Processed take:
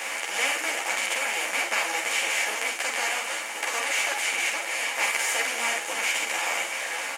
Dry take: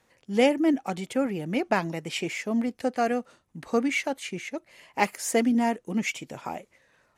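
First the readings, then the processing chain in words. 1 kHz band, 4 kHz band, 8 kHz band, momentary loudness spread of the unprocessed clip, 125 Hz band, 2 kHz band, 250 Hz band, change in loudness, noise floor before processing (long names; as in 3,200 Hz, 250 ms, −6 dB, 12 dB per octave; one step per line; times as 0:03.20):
+0.5 dB, +9.5 dB, +10.5 dB, 14 LU, below −25 dB, +9.5 dB, −21.5 dB, +2.0 dB, −68 dBFS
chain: compressor on every frequency bin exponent 0.2
high-pass filter 1,400 Hz 12 dB per octave
double-tracking delay 46 ms −5 dB
on a send: echo with shifted repeats 320 ms, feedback 58%, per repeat −72 Hz, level −24 dB
on the sum: string-ensemble chorus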